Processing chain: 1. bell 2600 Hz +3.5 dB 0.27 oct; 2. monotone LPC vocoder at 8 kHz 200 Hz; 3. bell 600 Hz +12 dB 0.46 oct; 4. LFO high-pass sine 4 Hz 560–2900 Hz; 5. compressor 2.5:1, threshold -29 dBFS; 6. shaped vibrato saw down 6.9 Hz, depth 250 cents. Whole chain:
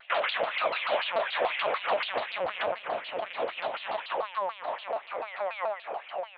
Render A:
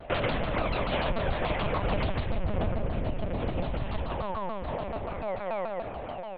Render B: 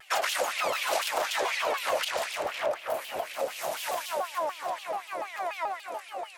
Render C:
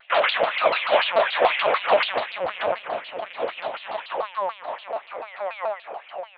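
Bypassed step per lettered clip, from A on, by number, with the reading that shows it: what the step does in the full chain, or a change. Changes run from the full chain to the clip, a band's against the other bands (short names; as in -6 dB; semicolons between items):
4, 250 Hz band +20.0 dB; 2, 4 kHz band +1.5 dB; 5, mean gain reduction 4.0 dB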